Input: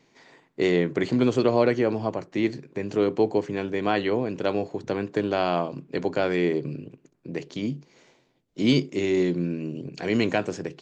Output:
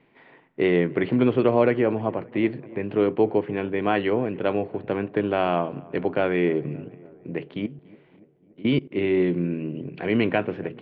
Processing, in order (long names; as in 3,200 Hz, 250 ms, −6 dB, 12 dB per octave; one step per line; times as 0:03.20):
Butterworth low-pass 3,100 Hz 36 dB per octave
0:07.66–0:08.91: output level in coarse steps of 21 dB
feedback echo with a low-pass in the loop 287 ms, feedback 66%, low-pass 1,800 Hz, level −22.5 dB
level +1.5 dB